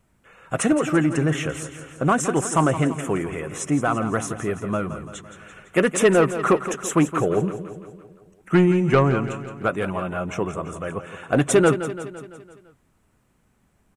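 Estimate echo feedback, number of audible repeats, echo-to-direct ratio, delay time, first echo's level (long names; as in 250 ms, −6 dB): 56%, 5, −10.0 dB, 169 ms, −11.5 dB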